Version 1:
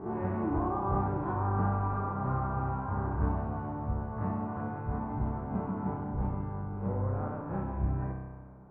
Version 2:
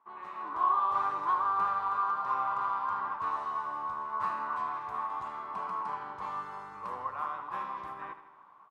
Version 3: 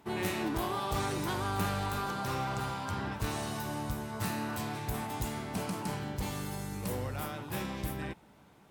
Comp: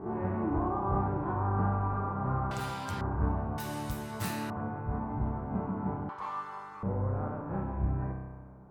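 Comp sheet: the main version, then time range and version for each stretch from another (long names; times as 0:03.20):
1
0:02.51–0:03.01: punch in from 3
0:03.58–0:04.50: punch in from 3
0:06.09–0:06.83: punch in from 2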